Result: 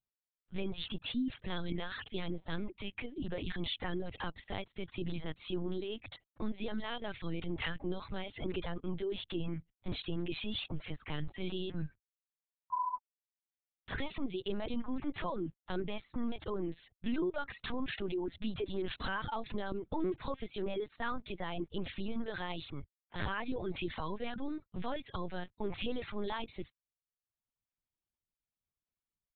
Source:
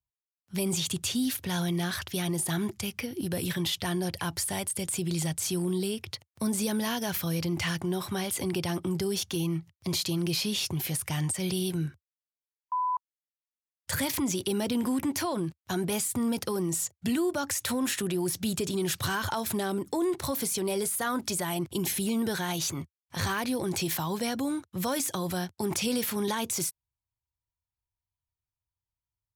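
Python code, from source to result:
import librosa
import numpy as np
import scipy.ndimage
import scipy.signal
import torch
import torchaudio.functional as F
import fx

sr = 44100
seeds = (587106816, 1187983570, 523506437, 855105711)

y = fx.lpc_vocoder(x, sr, seeds[0], excitation='pitch_kept', order=8)
y = fx.dereverb_blind(y, sr, rt60_s=0.76)
y = y * 10.0 ** (-5.0 / 20.0)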